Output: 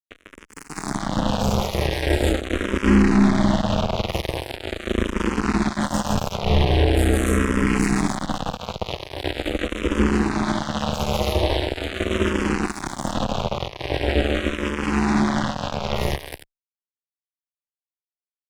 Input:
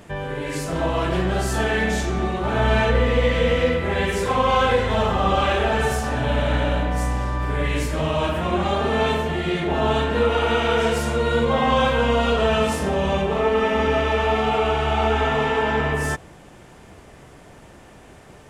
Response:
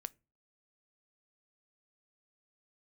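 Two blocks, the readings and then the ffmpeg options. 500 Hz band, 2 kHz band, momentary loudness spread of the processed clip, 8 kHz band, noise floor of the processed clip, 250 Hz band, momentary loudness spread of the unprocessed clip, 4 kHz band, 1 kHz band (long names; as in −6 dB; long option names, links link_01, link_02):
−5.0 dB, −4.0 dB, 11 LU, +2.0 dB, below −85 dBFS, +4.5 dB, 5 LU, −1.0 dB, −5.5 dB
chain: -filter_complex "[0:a]highpass=62,asplit=2[link_01][link_02];[link_02]acompressor=threshold=-33dB:ratio=6,volume=-1dB[link_03];[link_01][link_03]amix=inputs=2:normalize=0,aecho=1:1:148.7|192.4|288.6:0.631|0.316|0.794,acrossover=split=260|2200[link_04][link_05][link_06];[link_05]asoftclip=type=tanh:threshold=-16.5dB[link_07];[link_06]alimiter=level_in=2dB:limit=-24dB:level=0:latency=1:release=169,volume=-2dB[link_08];[link_04][link_07][link_08]amix=inputs=3:normalize=0,acrossover=split=340|3000[link_09][link_10][link_11];[link_10]acompressor=threshold=-30dB:ratio=10[link_12];[link_09][link_12][link_11]amix=inputs=3:normalize=0,acrusher=bits=2:mix=0:aa=0.5,aeval=exprs='val(0)*sin(2*PI*140*n/s)':channel_layout=same,asplit=2[link_13][link_14];[link_14]afreqshift=-0.42[link_15];[link_13][link_15]amix=inputs=2:normalize=1,volume=6dB"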